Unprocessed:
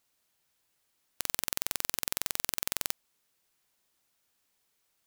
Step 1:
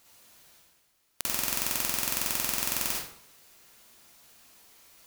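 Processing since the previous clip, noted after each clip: reverse; upward compressor, threshold -48 dBFS; reverse; reverberation RT60 0.60 s, pre-delay 43 ms, DRR -4 dB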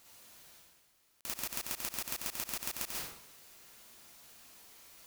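slow attack 216 ms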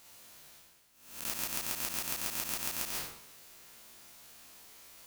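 reverse spectral sustain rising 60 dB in 0.65 s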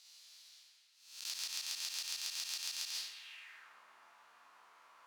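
feedback echo behind a band-pass 124 ms, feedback 76%, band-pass 1.6 kHz, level -7 dB; band-pass sweep 4.5 kHz -> 1.1 kHz, 3.13–3.77 s; trim +4.5 dB

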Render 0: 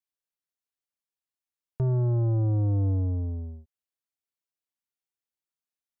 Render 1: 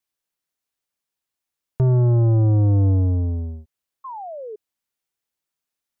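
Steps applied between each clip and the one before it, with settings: painted sound fall, 4.04–4.56 s, 410–1100 Hz -41 dBFS; trim +8 dB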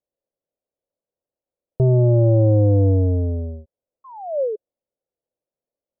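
resonant low-pass 550 Hz, resonance Q 4.9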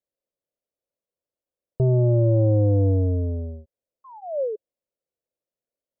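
band-stop 800 Hz, Q 13; trim -3.5 dB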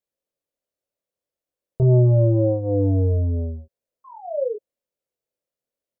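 doubling 24 ms -3.5 dB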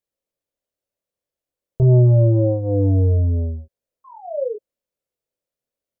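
bass shelf 130 Hz +5.5 dB

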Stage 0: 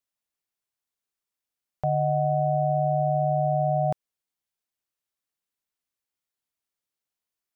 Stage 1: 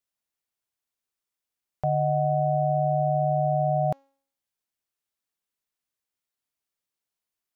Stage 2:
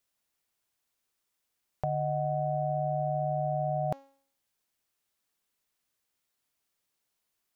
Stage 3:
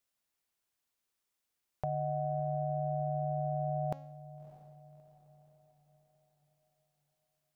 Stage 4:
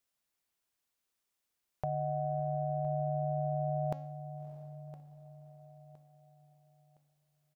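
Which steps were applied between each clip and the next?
de-hum 273.9 Hz, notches 26
compressor with a negative ratio -30 dBFS, ratio -1
echo that smears into a reverb 618 ms, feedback 47%, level -16 dB; trim -4 dB
feedback delay 1014 ms, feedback 36%, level -16 dB

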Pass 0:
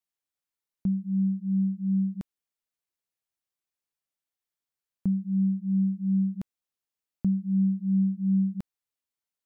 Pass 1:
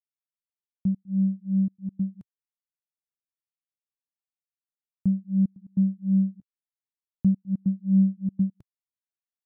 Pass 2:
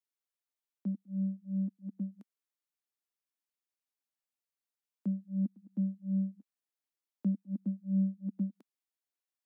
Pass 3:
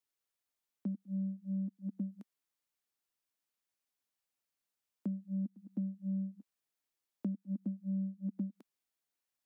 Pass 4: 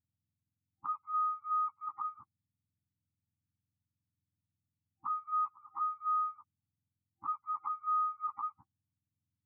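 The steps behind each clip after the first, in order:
peaking EQ 120 Hz +10 dB 1.6 oct; trance gate ".xxxxxx.x" 143 bpm -24 dB; upward expansion 2.5:1, over -27 dBFS
steep high-pass 220 Hz 48 dB/octave
compression, threshold -37 dBFS, peak gain reduction 11 dB; trim +3 dB
spectrum inverted on a logarithmic axis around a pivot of 490 Hz; level-controlled noise filter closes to 650 Hz, open at -36 dBFS; FFT band-reject 340–780 Hz; trim +4 dB

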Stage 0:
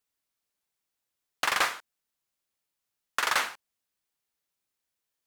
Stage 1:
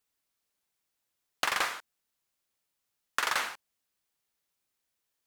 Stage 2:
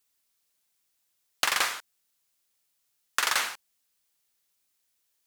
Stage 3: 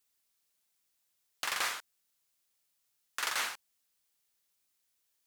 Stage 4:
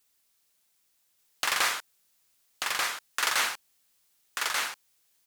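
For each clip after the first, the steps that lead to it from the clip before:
compression, threshold -27 dBFS, peak gain reduction 7 dB; trim +2 dB
treble shelf 2.6 kHz +8.5 dB
peak limiter -17.5 dBFS, peak gain reduction 9.5 dB; trim -3 dB
delay 1187 ms -3 dB; trim +7 dB

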